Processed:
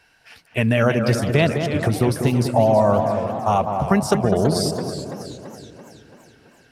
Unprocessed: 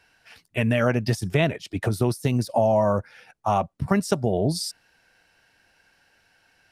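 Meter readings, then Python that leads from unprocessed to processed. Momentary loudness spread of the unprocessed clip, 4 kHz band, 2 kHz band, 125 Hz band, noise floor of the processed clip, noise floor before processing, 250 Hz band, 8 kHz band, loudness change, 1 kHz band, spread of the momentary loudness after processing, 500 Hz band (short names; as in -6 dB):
8 LU, +4.0 dB, +4.5 dB, +4.5 dB, -56 dBFS, -64 dBFS, +5.0 dB, +4.0 dB, +4.5 dB, +5.5 dB, 14 LU, +5.0 dB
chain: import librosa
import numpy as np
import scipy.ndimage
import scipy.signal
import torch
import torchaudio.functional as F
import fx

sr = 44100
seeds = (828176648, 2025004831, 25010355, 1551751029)

y = fx.echo_tape(x, sr, ms=202, feedback_pct=63, wet_db=-4.5, lp_hz=1200.0, drive_db=8.0, wow_cents=40)
y = fx.echo_warbled(y, sr, ms=329, feedback_pct=55, rate_hz=2.8, cents=199, wet_db=-11)
y = y * librosa.db_to_amplitude(3.5)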